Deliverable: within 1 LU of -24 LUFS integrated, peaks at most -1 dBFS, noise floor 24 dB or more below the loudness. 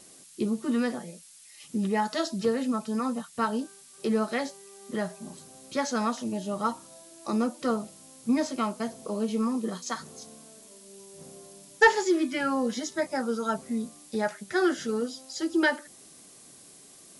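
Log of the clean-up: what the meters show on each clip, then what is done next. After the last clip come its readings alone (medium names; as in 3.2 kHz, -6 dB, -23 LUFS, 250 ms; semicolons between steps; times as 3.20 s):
noise floor -52 dBFS; noise floor target -53 dBFS; loudness -29.0 LUFS; peak level -8.0 dBFS; loudness target -24.0 LUFS
-> noise reduction 6 dB, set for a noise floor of -52 dBFS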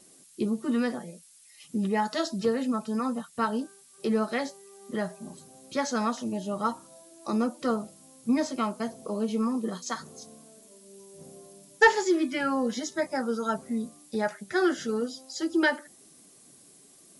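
noise floor -56 dBFS; loudness -29.0 LUFS; peak level -8.0 dBFS; loudness target -24.0 LUFS
-> trim +5 dB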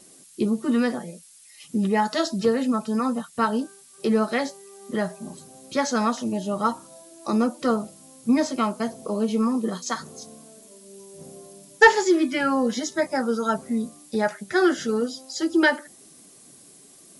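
loudness -24.0 LUFS; peak level -3.0 dBFS; noise floor -51 dBFS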